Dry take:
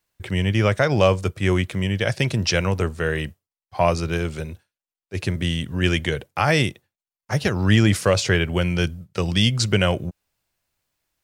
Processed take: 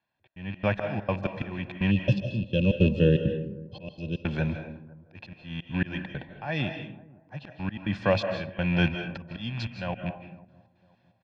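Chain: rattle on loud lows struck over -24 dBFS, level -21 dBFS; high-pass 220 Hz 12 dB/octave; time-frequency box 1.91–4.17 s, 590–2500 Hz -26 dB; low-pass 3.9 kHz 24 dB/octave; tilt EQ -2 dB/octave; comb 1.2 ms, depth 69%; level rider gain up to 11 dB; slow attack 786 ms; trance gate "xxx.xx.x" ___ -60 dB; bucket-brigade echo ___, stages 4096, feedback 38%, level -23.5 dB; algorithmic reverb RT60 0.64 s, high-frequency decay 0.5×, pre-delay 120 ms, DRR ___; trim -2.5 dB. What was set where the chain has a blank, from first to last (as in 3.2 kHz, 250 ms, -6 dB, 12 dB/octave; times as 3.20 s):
166 bpm, 504 ms, 7 dB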